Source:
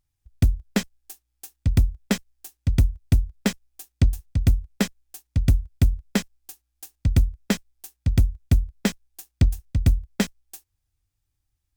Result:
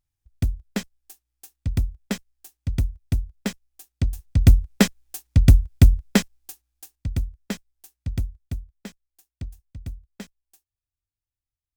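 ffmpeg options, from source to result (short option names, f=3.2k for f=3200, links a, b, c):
-af "volume=6dB,afade=t=in:st=4.09:d=0.42:silence=0.298538,afade=t=out:st=5.94:d=1.13:silence=0.223872,afade=t=out:st=8.12:d=0.6:silence=0.354813"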